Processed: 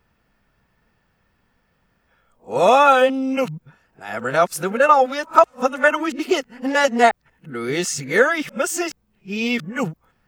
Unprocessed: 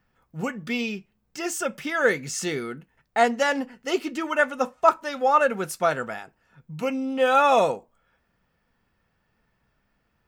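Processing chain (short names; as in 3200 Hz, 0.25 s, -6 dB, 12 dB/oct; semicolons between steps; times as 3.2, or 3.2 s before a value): whole clip reversed; gain +5.5 dB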